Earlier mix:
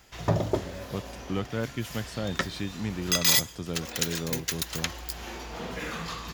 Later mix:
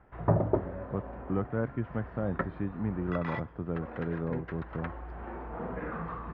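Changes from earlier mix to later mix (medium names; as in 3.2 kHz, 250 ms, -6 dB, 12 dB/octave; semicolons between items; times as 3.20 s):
background: add treble shelf 7.2 kHz -6 dB; master: add low-pass 1.5 kHz 24 dB/octave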